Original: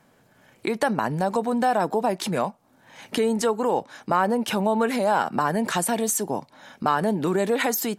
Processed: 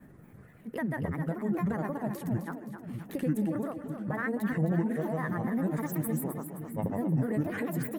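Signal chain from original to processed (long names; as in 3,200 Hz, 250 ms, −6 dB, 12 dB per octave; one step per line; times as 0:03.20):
granular cloud, pitch spread up and down by 7 semitones
parametric band 1,800 Hz +13.5 dB 0.55 octaves
upward compression, threshold −33 dBFS
drawn EQ curve 160 Hz 0 dB, 900 Hz −17 dB, 5,200 Hz −27 dB, 13,000 Hz −8 dB
echo with a time of its own for lows and highs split 320 Hz, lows 613 ms, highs 262 ms, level −8.5 dB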